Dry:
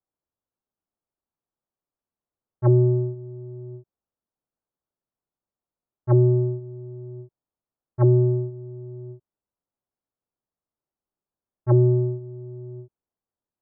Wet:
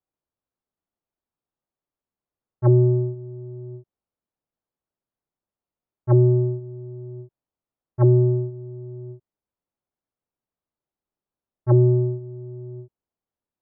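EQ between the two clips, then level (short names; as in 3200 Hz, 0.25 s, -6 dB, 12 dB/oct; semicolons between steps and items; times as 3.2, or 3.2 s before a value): air absorption 230 m; +1.5 dB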